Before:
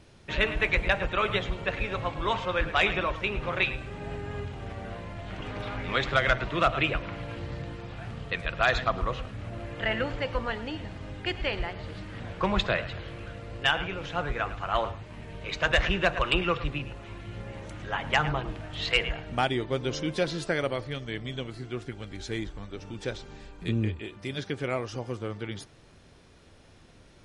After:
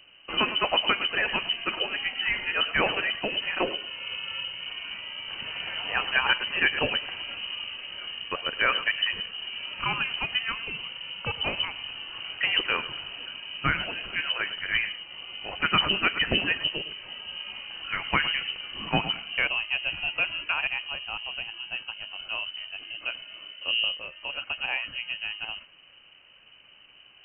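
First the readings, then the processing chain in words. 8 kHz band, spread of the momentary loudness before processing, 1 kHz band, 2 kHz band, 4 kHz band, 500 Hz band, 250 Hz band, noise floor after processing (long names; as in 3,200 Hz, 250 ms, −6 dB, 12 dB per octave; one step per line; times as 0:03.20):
below −30 dB, 15 LU, −1.5 dB, +3.0 dB, +8.0 dB, −6.0 dB, −5.0 dB, −54 dBFS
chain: voice inversion scrambler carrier 3,000 Hz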